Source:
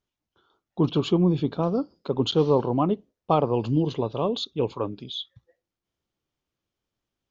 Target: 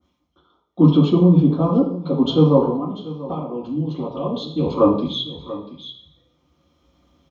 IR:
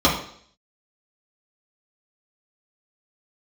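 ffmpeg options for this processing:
-filter_complex "[0:a]asettb=1/sr,asplit=3[s0][s1][s2];[s0]atrim=end=2.694[s3];[s1]atrim=start=2.69:end=4.66,asetpts=PTS-STARTPTS,afade=t=in:d=0.004:c=qsin,afade=t=out:st=1.966:d=0.004:c=qsin,acompressor=threshold=0.0251:ratio=5[s4];[s2]atrim=start=4.656[s5];[s3][s4]acrossfade=d=0.004:c1=hsin:c2=qsin[s6];[s6][s5]acrossfade=d=0.004:c1=qsin:c2=hsin,aecho=1:1:688:0.141[s7];[1:a]atrim=start_sample=2205[s8];[s7][s8]afir=irnorm=-1:irlink=0,dynaudnorm=f=420:g=7:m=3.76,adynamicequalizer=threshold=0.0178:dfrequency=1700:dqfactor=0.7:tfrequency=1700:tqfactor=0.7:attack=5:release=100:ratio=0.375:range=3.5:mode=cutabove:tftype=highshelf,volume=0.841"

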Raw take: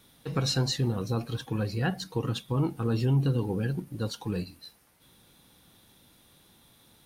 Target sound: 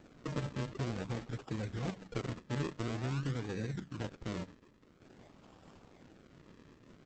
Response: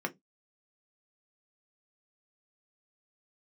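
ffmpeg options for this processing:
-af "acompressor=threshold=0.00282:ratio=2,aresample=8000,aresample=44100,acrusher=samples=41:mix=1:aa=0.000001:lfo=1:lforange=41:lforate=0.49,volume=1.88" -ar 48000 -c:a libopus -b:a 10k

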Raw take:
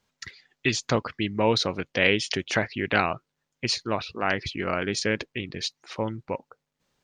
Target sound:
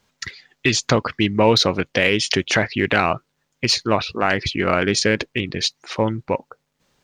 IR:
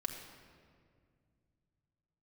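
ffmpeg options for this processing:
-filter_complex "[0:a]asplit=2[s0][s1];[s1]asoftclip=type=hard:threshold=0.1,volume=0.266[s2];[s0][s2]amix=inputs=2:normalize=0,alimiter=limit=0.282:level=0:latency=1:release=107,volume=2.24"

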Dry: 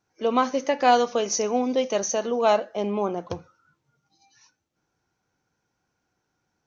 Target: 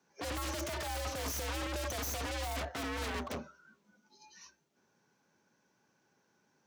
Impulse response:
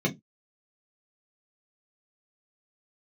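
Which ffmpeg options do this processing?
-af "aeval=exprs='(tanh(39.8*val(0)+0.75)-tanh(0.75))/39.8':c=same,aeval=exprs='0.01*(abs(mod(val(0)/0.01+3,4)-2)-1)':c=same,afreqshift=68,volume=2.24"

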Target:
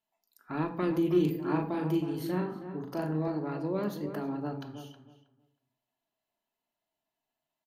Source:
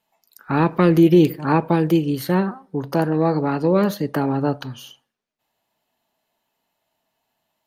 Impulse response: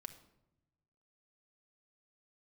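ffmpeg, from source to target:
-filter_complex "[0:a]asettb=1/sr,asplit=3[s0][s1][s2];[s0]atrim=end=1.114[s3];[s1]atrim=start=1.11:end=3.28,asetpts=PTS-STARTPTS,afade=t=in:d=0.004:c=qsin,afade=t=out:st=2.166:d=0.004:c=qsin,asplit=2[s4][s5];[s5]adelay=39,volume=0.562[s6];[s4][s6]amix=inputs=2:normalize=0,atrim=end_sample=95697[s7];[s2]atrim=start=3.276[s8];[s3][s7]acrossfade=d=0.004:c1=hsin:c2=qsin[s9];[s9][s8]acrossfade=d=0.004:c1=qsin:c2=hsin,asplit=2[s10][s11];[s11]adelay=318,lowpass=f=1700:p=1,volume=0.335,asplit=2[s12][s13];[s13]adelay=318,lowpass=f=1700:p=1,volume=0.2,asplit=2[s14][s15];[s15]adelay=318,lowpass=f=1700:p=1,volume=0.2[s16];[s10][s12][s14][s16]amix=inputs=4:normalize=0[s17];[1:a]atrim=start_sample=2205,asetrate=70560,aresample=44100[s18];[s17][s18]afir=irnorm=-1:irlink=0,volume=0.531"

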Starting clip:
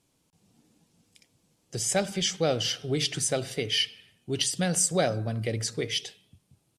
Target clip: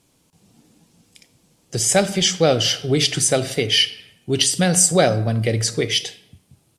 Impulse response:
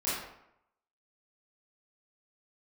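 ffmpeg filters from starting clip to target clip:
-filter_complex "[0:a]asplit=2[s0][s1];[1:a]atrim=start_sample=2205,highshelf=f=8700:g=11.5[s2];[s1][s2]afir=irnorm=-1:irlink=0,volume=0.0794[s3];[s0][s3]amix=inputs=2:normalize=0,volume=2.82"

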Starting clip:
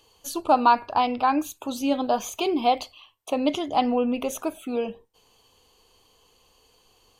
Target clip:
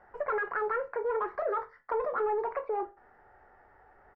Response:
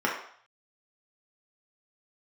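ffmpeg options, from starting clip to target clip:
-filter_complex "[0:a]asoftclip=type=tanh:threshold=0.0708,lowpass=f=1000:w=0.5412,lowpass=f=1000:w=1.3066,asplit=2[s0][s1];[s1]lowshelf=f=430:g=9[s2];[1:a]atrim=start_sample=2205,atrim=end_sample=3528[s3];[s2][s3]afir=irnorm=-1:irlink=0,volume=0.133[s4];[s0][s4]amix=inputs=2:normalize=0,acompressor=threshold=0.0112:ratio=2,equalizer=f=82:t=o:w=0.41:g=-10.5,aecho=1:1:73|146|219|292:0.141|0.0607|0.0261|0.0112,asetrate=76440,aresample=44100,volume=1.33"

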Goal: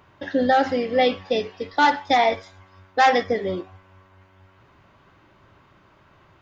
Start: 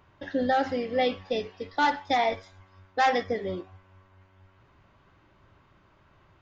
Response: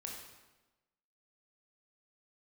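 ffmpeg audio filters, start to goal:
-af "lowshelf=f=66:g=-10,volume=2.11"

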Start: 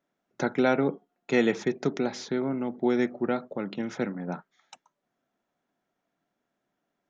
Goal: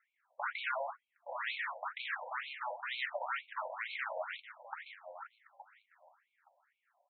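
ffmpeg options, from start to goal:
-filter_complex "[0:a]highshelf=f=3000:t=q:w=1.5:g=-13,acrossover=split=240|660[s0][s1][s2];[s2]dynaudnorm=f=530:g=5:m=1.5[s3];[s0][s1][s3]amix=inputs=3:normalize=0,aeval=exprs='(tanh(79.4*val(0)+0.35)-tanh(0.35))/79.4':c=same,flanger=delay=1.5:depth=9.7:regen=70:speed=0.96:shape=sinusoidal,asplit=2[s4][s5];[s5]aecho=0:1:869|1738:0.266|0.0452[s6];[s4][s6]amix=inputs=2:normalize=0,afftfilt=real='re*between(b*sr/1024,690*pow(3100/690,0.5+0.5*sin(2*PI*2.1*pts/sr))/1.41,690*pow(3100/690,0.5+0.5*sin(2*PI*2.1*pts/sr))*1.41)':imag='im*between(b*sr/1024,690*pow(3100/690,0.5+0.5*sin(2*PI*2.1*pts/sr))/1.41,690*pow(3100/690,0.5+0.5*sin(2*PI*2.1*pts/sr))*1.41)':win_size=1024:overlap=0.75,volume=5.62"

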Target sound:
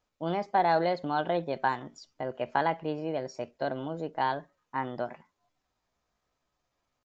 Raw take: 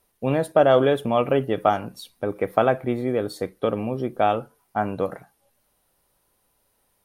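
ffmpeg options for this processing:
-af "asetrate=55563,aresample=44100,atempo=0.793701,aresample=16000,aresample=44100,volume=0.376"

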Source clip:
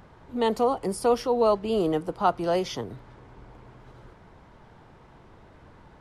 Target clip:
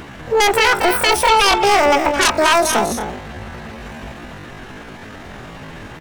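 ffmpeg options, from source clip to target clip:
-af "aeval=exprs='0.335*sin(PI/2*4.47*val(0)/0.335)':c=same,aecho=1:1:218.7|262.4:0.355|0.251,asetrate=80880,aresample=44100,atempo=0.545254"

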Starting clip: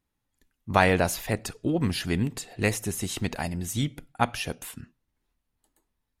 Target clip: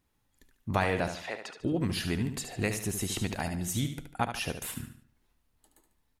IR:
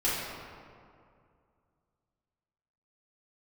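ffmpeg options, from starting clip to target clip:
-filter_complex "[0:a]acompressor=threshold=0.01:ratio=2,asettb=1/sr,asplit=3[s0][s1][s2];[s0]atrim=end=1.084[s3];[s1]atrim=start=1.08:end=1.6,asetpts=PTS-STARTPTS,afade=t=in:d=0.004:c=qsin,afade=t=out:st=0.516:d=0.004:c=qsin,highpass=540,lowpass=4000[s4];[s2]atrim=start=1.596[s5];[s3][s4]acrossfade=d=0.004:c1=hsin:c2=qsin[s6];[s6][s5]acrossfade=d=0.004:c1=qsin:c2=hsin,aecho=1:1:73|146|219|292:0.376|0.143|0.0543|0.0206,volume=1.78"

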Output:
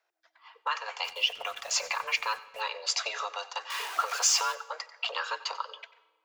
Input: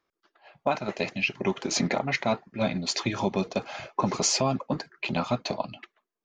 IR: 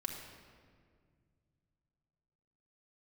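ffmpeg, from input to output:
-filter_complex "[0:a]asettb=1/sr,asplit=3[s0][s1][s2];[s0]atrim=end=3.704[s3];[s1]atrim=start=3.7:end=4.55,asetpts=PTS-STARTPTS,afade=t=in:d=0.004:c=qsin,afade=t=out:st=0.846:d=0.004:c=qsin,aeval=exprs='val(0)+0.5*0.0237*sgn(val(0))':c=same[s4];[s2]atrim=start=4.546[s5];[s3][s4]acrossfade=d=0.004:c1=hsin:c2=qsin[s6];[s6][s5]acrossfade=d=0.004:c1=qsin:c2=hsin,acrossover=split=750[s7][s8];[s7]acompressor=threshold=0.00794:ratio=6[s9];[s9][s8]amix=inputs=2:normalize=0,afreqshift=320,bandreject=f=380:w=12,asplit=3[s10][s11][s12];[s10]afade=t=out:st=1.03:d=0.02[s13];[s11]acrusher=bits=7:mix=0:aa=0.5,afade=t=in:st=1.03:d=0.02,afade=t=out:st=2.6:d=0.02[s14];[s12]afade=t=in:st=2.6:d=0.02[s15];[s13][s14][s15]amix=inputs=3:normalize=0,asplit=2[s16][s17];[1:a]atrim=start_sample=2205,asetrate=66150,aresample=44100,adelay=91[s18];[s17][s18]afir=irnorm=-1:irlink=0,volume=0.224[s19];[s16][s19]amix=inputs=2:normalize=0"

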